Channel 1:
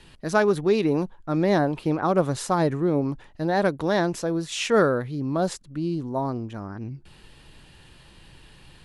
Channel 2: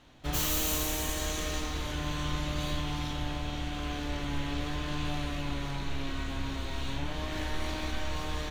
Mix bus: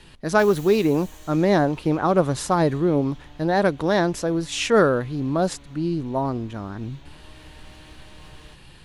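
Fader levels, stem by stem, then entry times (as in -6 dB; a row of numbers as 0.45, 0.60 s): +2.5, -13.5 dB; 0.00, 0.05 s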